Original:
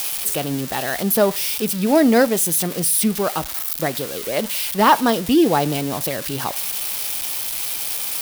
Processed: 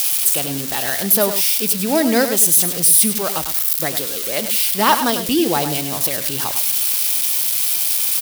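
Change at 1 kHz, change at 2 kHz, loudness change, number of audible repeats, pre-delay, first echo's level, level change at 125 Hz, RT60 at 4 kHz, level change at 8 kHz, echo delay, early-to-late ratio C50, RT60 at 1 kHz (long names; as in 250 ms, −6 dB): −1.0 dB, +1.0 dB, +4.0 dB, 1, no reverb audible, −9.5 dB, −2.5 dB, no reverb audible, +7.0 dB, 101 ms, no reverb audible, no reverb audible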